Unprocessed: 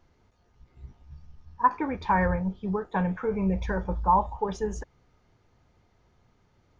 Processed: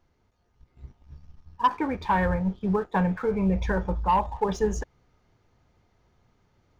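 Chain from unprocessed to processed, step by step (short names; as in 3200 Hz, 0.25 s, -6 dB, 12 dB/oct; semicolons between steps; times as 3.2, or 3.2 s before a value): sample leveller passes 1; vocal rider 0.5 s; gain -1.5 dB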